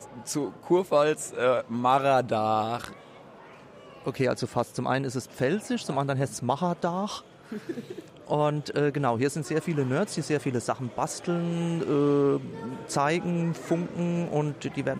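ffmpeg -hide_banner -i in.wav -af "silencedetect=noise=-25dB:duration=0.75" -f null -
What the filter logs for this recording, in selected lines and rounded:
silence_start: 2.88
silence_end: 4.07 | silence_duration: 1.19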